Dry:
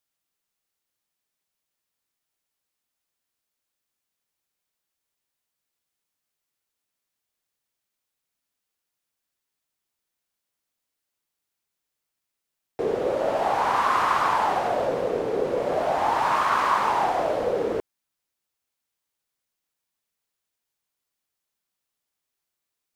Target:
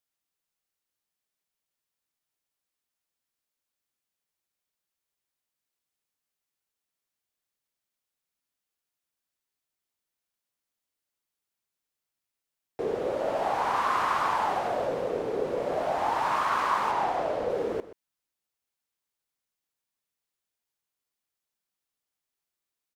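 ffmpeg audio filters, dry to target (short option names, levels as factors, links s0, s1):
-filter_complex "[0:a]asettb=1/sr,asplit=3[s0][s1][s2];[s0]atrim=end=16.914[s3];[s1]atrim=start=16.91:end=17.5,asetpts=PTS-STARTPTS,afade=t=in:d=0.004:c=qsin,afade=t=out:st=0.586:d=0.004:c=qsin,highshelf=f=7900:g=-7.5[s4];[s2]atrim=start=17.496[s5];[s3][s4]acrossfade=d=0.004:c1=hsin:c2=qsin[s6];[s6][s5]acrossfade=d=0.004:c1=qsin:c2=hsin,aecho=1:1:127:0.168,volume=0.596"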